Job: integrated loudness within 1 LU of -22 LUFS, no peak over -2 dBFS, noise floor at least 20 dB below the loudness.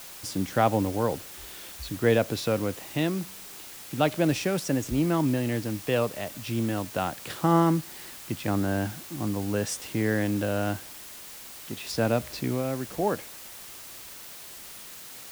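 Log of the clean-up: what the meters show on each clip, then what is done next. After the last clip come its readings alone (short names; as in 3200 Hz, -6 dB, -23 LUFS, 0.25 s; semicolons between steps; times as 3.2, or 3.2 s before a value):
noise floor -44 dBFS; noise floor target -48 dBFS; loudness -28.0 LUFS; peak -8.5 dBFS; loudness target -22.0 LUFS
-> denoiser 6 dB, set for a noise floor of -44 dBFS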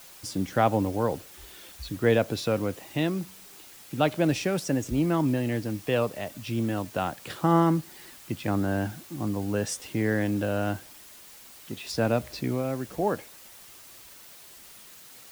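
noise floor -49 dBFS; loudness -28.0 LUFS; peak -9.0 dBFS; loudness target -22.0 LUFS
-> gain +6 dB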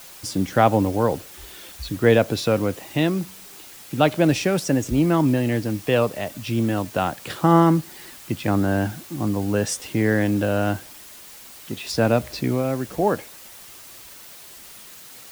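loudness -22.0 LUFS; peak -3.0 dBFS; noise floor -43 dBFS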